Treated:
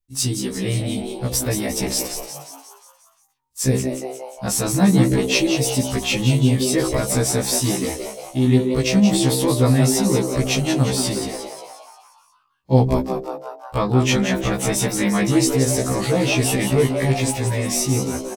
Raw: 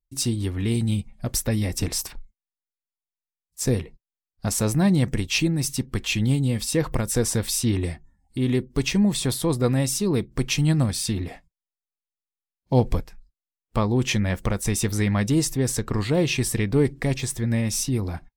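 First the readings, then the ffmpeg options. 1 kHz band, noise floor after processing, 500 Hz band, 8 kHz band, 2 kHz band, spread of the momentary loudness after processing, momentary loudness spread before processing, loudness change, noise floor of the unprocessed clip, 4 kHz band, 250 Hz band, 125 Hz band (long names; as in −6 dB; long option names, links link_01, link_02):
+7.5 dB, −58 dBFS, +6.0 dB, +5.5 dB, +5.0 dB, 11 LU, 6 LU, +4.5 dB, below −85 dBFS, +5.0 dB, +4.5 dB, +3.0 dB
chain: -filter_complex "[0:a]bandreject=frequency=64.93:width_type=h:width=4,bandreject=frequency=129.86:width_type=h:width=4,bandreject=frequency=194.79:width_type=h:width=4,bandreject=frequency=259.72:width_type=h:width=4,bandreject=frequency=324.65:width_type=h:width=4,bandreject=frequency=389.58:width_type=h:width=4,asplit=8[link_01][link_02][link_03][link_04][link_05][link_06][link_07][link_08];[link_02]adelay=178,afreqshift=130,volume=-7.5dB[link_09];[link_03]adelay=356,afreqshift=260,volume=-12.5dB[link_10];[link_04]adelay=534,afreqshift=390,volume=-17.6dB[link_11];[link_05]adelay=712,afreqshift=520,volume=-22.6dB[link_12];[link_06]adelay=890,afreqshift=650,volume=-27.6dB[link_13];[link_07]adelay=1068,afreqshift=780,volume=-32.7dB[link_14];[link_08]adelay=1246,afreqshift=910,volume=-37.7dB[link_15];[link_01][link_09][link_10][link_11][link_12][link_13][link_14][link_15]amix=inputs=8:normalize=0,afftfilt=real='re*1.73*eq(mod(b,3),0)':imag='im*1.73*eq(mod(b,3),0)':win_size=2048:overlap=0.75,volume=6.5dB"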